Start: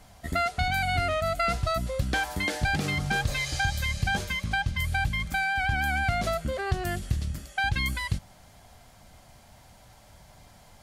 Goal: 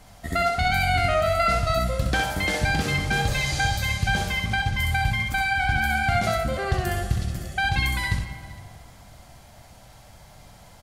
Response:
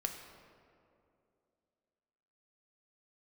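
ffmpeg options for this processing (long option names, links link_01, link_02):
-filter_complex "[0:a]aecho=1:1:460:0.0708,asplit=2[link_01][link_02];[1:a]atrim=start_sample=2205,adelay=64[link_03];[link_02][link_03]afir=irnorm=-1:irlink=0,volume=-3.5dB[link_04];[link_01][link_04]amix=inputs=2:normalize=0,volume=2.5dB"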